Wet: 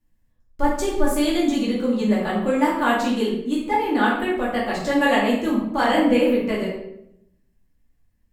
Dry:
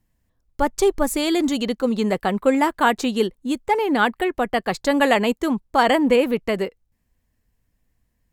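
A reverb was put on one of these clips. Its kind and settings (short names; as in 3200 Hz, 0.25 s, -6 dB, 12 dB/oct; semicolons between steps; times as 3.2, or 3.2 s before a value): shoebox room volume 190 m³, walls mixed, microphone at 2.5 m; gain -10 dB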